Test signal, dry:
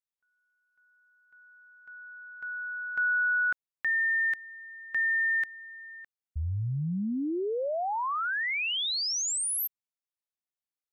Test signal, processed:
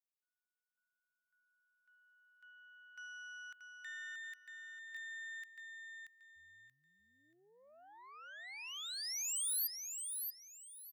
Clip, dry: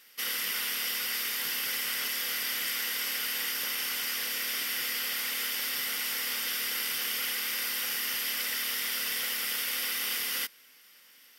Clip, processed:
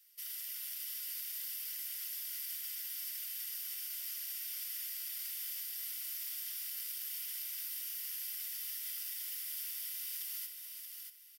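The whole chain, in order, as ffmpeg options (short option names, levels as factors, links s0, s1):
-filter_complex "[0:a]equalizer=f=210:t=o:w=1.6:g=-13.5,aeval=exprs='0.126*(cos(1*acos(clip(val(0)/0.126,-1,1)))-cos(1*PI/2))+0.00708*(cos(6*acos(clip(val(0)/0.126,-1,1)))-cos(6*PI/2))':c=same,aderivative,alimiter=limit=0.0668:level=0:latency=1,asplit=2[s0][s1];[s1]aecho=0:1:631|1262|1893:0.531|0.138|0.0359[s2];[s0][s2]amix=inputs=2:normalize=0,volume=0.355"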